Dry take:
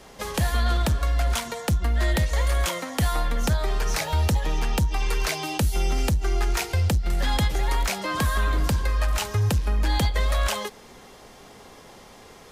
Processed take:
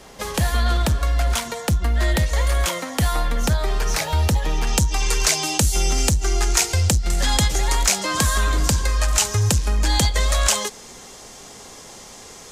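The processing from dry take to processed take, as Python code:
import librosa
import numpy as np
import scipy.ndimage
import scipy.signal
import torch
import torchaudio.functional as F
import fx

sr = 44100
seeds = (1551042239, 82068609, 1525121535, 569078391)

y = fx.peak_eq(x, sr, hz=7100.0, db=fx.steps((0.0, 2.5), (4.67, 13.5)), octaves=1.2)
y = y * librosa.db_to_amplitude(3.0)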